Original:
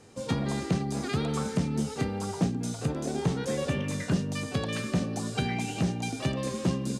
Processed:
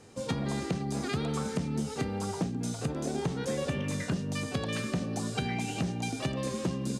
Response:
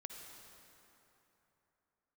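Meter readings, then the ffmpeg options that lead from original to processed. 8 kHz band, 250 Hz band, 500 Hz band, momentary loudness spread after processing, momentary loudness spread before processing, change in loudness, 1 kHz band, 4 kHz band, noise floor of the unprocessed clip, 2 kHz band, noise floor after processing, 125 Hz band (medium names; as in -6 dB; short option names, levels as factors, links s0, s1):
-1.5 dB, -3.0 dB, -2.0 dB, 1 LU, 2 LU, -2.5 dB, -1.5 dB, -1.5 dB, -38 dBFS, -1.5 dB, -39 dBFS, -3.0 dB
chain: -af "acompressor=threshold=0.0447:ratio=6"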